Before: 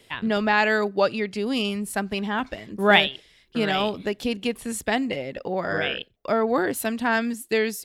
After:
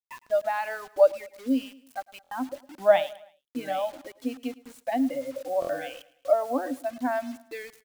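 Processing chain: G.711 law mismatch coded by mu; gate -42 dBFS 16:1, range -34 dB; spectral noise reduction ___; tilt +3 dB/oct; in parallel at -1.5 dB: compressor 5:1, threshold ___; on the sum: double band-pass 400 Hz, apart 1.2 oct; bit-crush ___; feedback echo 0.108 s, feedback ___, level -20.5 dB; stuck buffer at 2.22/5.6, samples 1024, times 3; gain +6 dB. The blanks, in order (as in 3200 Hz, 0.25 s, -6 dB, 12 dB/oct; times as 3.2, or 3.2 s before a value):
27 dB, -31 dBFS, 9-bit, 45%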